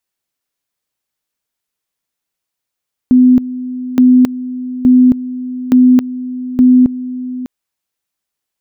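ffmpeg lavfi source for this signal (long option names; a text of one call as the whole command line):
ffmpeg -f lavfi -i "aevalsrc='pow(10,(-3.5-15.5*gte(mod(t,0.87),0.27))/20)*sin(2*PI*252*t)':duration=4.35:sample_rate=44100" out.wav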